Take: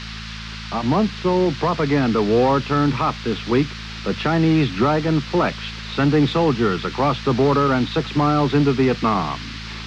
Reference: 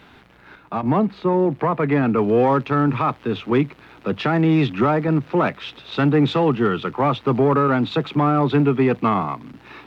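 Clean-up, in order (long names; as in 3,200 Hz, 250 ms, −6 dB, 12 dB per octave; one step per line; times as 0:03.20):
hum removal 54.9 Hz, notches 4
noise reduction from a noise print 14 dB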